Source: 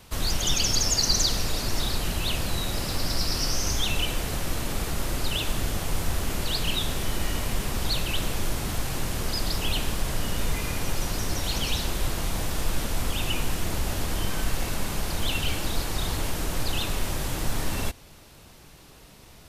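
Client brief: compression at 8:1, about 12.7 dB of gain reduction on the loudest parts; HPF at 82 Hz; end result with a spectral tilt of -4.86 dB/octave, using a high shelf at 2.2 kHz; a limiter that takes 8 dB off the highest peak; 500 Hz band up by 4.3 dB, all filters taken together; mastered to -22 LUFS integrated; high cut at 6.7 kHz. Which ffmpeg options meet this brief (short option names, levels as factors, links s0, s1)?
-af "highpass=82,lowpass=6700,equalizer=f=500:t=o:g=6,highshelf=f=2200:g=-8.5,acompressor=threshold=0.01:ratio=8,volume=17.8,alimiter=limit=0.224:level=0:latency=1"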